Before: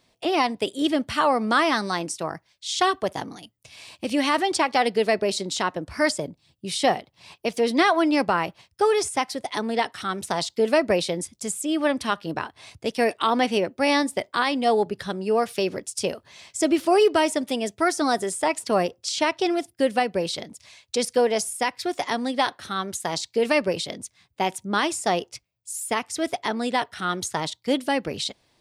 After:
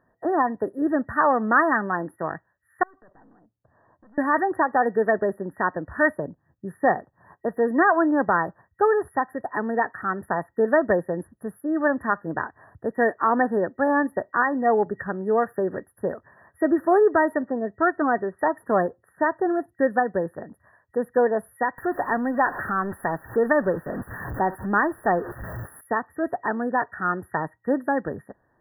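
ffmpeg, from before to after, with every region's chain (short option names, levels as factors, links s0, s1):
-filter_complex "[0:a]asettb=1/sr,asplit=3[s0][s1][s2];[s0]atrim=end=2.834[s3];[s1]atrim=start=2.83:end=4.18,asetpts=PTS-STARTPTS,afade=t=in:d=0.004:c=qsin,afade=t=out:st=1.346:d=0.004:c=qsin,lowpass=1100,aeval=exprs='(tanh(79.4*val(0)+0.55)-tanh(0.55))/79.4':c=same,acompressor=threshold=0.00158:ratio=3:attack=3.2:release=140:knee=1:detection=peak[s4];[s2]atrim=start=4.176[s5];[s3][s4]acrossfade=d=0.004:c1=hsin:c2=qsin[s6];[s6][s5]acrossfade=d=0.004:c1=qsin:c2=hsin,asettb=1/sr,asplit=3[s7][s8][s9];[s7]atrim=end=17.464[s10];[s8]atrim=start=17.46:end=18.39,asetpts=PTS-STARTPTS,afade=t=in:d=0.004:c=qsin,afade=t=out:st=0.926:d=0.004:c=qsin,lowpass=2200,bandreject=f=880:w=16[s11];[s9]atrim=start=18.386[s12];[s10][s11]acrossfade=d=0.004:c1=hsin:c2=qsin[s13];[s13][s12]acrossfade=d=0.004:c1=qsin:c2=hsin,asettb=1/sr,asplit=3[s14][s15][s16];[s14]atrim=end=21.784[s17];[s15]atrim=start=21.78:end=25.81,asetpts=PTS-STARTPTS,afade=t=in:d=0.004:c=qsin,afade=t=out:st=4.026:d=0.004:c=qsin,aeval=exprs='val(0)+0.5*0.0224*sgn(val(0))':c=same,acompressor=mode=upward:threshold=0.0631:ratio=2.5:attack=3.2:release=140:knee=2.83:detection=peak[s18];[s16]atrim=start=25.806[s19];[s17][s18]acrossfade=d=0.004:c1=hsin:c2=qsin[s20];[s20][s19]acrossfade=d=0.004:c1=qsin:c2=hsin,afftfilt=real='re*(1-between(b*sr/4096,1900,10000))':imag='im*(1-between(b*sr/4096,1900,10000))':win_size=4096:overlap=0.75,highshelf=f=3400:t=q:w=3:g=-13.5"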